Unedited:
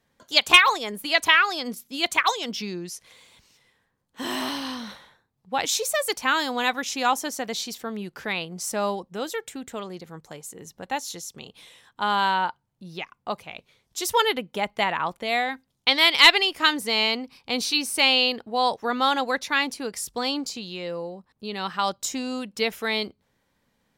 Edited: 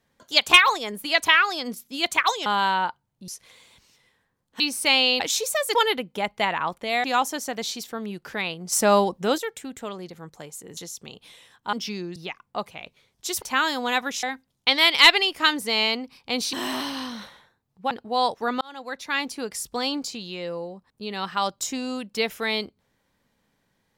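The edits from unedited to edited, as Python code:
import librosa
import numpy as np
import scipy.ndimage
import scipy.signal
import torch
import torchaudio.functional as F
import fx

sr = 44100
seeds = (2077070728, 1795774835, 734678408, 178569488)

y = fx.edit(x, sr, fx.swap(start_s=2.46, length_s=0.43, other_s=12.06, other_length_s=0.82),
    fx.swap(start_s=4.21, length_s=1.38, other_s=17.73, other_length_s=0.6),
    fx.swap(start_s=6.14, length_s=0.81, other_s=14.14, other_length_s=1.29),
    fx.clip_gain(start_s=8.63, length_s=0.66, db=8.0),
    fx.cut(start_s=10.68, length_s=0.42),
    fx.fade_in_span(start_s=19.03, length_s=0.77), tone=tone)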